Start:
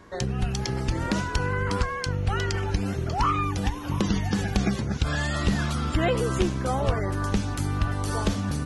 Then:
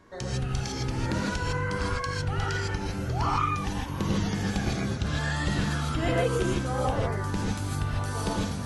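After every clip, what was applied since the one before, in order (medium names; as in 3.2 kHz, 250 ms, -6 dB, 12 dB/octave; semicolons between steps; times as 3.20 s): gated-style reverb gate 180 ms rising, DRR -4 dB; trim -7 dB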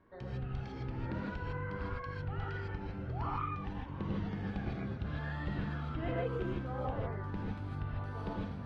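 distance through air 400 m; trim -9 dB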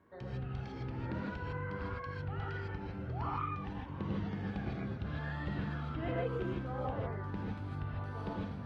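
high-pass 59 Hz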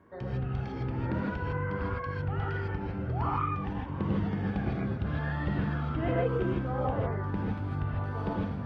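treble shelf 3.2 kHz -8 dB; band-stop 4 kHz, Q 21; trim +7.5 dB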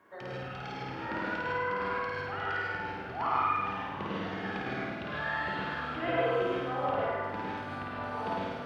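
high-pass 1.2 kHz 6 dB/octave; on a send: flutter echo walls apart 9 m, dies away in 1.2 s; on the sum: trim +5 dB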